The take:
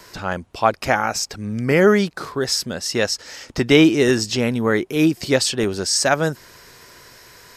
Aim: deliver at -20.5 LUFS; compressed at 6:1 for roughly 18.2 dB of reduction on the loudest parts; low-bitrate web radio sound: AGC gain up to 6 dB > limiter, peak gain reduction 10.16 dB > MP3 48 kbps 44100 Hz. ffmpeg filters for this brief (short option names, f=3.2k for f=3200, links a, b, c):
-af "acompressor=threshold=-29dB:ratio=6,dynaudnorm=m=6dB,alimiter=level_in=2dB:limit=-24dB:level=0:latency=1,volume=-2dB,volume=15.5dB" -ar 44100 -c:a libmp3lame -b:a 48k